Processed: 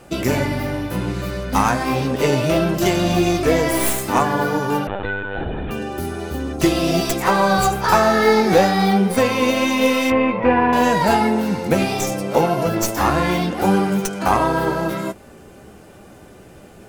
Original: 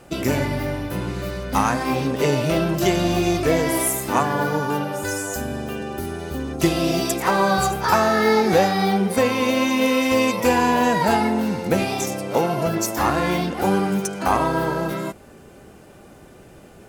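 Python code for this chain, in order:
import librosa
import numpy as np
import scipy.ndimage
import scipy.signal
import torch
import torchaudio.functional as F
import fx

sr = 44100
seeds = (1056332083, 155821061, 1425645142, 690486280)

y = fx.tracing_dist(x, sr, depth_ms=0.068)
y = fx.lowpass(y, sr, hz=2400.0, slope=24, at=(10.1, 10.73))
y = fx.chorus_voices(y, sr, voices=6, hz=0.67, base_ms=13, depth_ms=3.8, mix_pct=25)
y = fx.lpc_vocoder(y, sr, seeds[0], excitation='pitch_kept', order=16, at=(4.87, 5.71))
y = F.gain(torch.from_numpy(y), 4.5).numpy()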